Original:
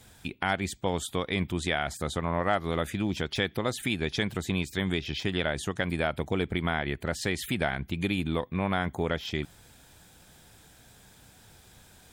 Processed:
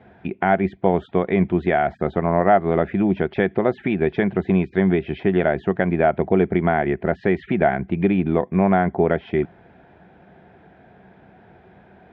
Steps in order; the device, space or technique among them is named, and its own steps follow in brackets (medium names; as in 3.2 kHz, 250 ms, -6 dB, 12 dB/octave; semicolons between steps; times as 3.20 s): bass cabinet (cabinet simulation 86–2100 Hz, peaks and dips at 110 Hz -5 dB, 190 Hz +7 dB, 380 Hz +9 dB, 690 Hz +9 dB, 1.2 kHz -4 dB); trim +6.5 dB